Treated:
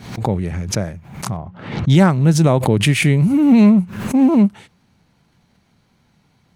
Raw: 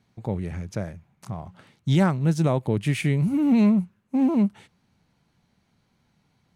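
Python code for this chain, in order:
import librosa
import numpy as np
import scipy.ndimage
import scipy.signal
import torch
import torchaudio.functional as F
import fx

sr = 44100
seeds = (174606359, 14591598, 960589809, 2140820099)

y = fx.spacing_loss(x, sr, db_at_10k=30, at=(1.37, 1.9))
y = fx.pre_swell(y, sr, db_per_s=82.0)
y = y * 10.0 ** (8.0 / 20.0)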